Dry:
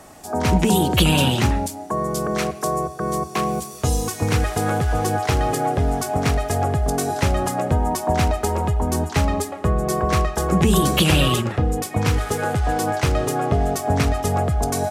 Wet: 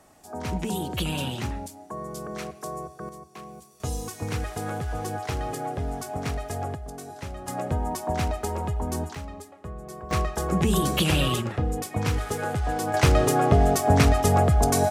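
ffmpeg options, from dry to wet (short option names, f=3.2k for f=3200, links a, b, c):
-af "asetnsamples=n=441:p=0,asendcmd='3.09 volume volume -20dB;3.8 volume volume -10dB;6.75 volume volume -17dB;7.48 volume volume -7.5dB;9.15 volume volume -18dB;10.11 volume volume -6dB;12.94 volume volume 1dB',volume=-12dB"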